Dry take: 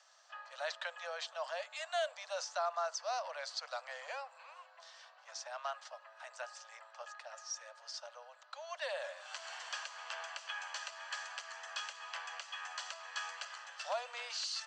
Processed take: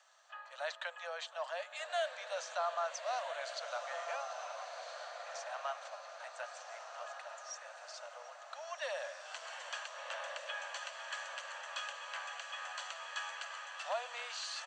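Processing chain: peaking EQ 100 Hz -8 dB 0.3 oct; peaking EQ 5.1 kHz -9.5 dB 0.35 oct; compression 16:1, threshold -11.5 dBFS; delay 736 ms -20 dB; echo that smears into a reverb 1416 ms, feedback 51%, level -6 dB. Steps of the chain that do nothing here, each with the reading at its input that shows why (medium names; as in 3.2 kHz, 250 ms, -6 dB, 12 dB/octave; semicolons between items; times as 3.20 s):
peaking EQ 100 Hz: input has nothing below 450 Hz; compression, threshold -11.5 dBFS: peak at its input -25.0 dBFS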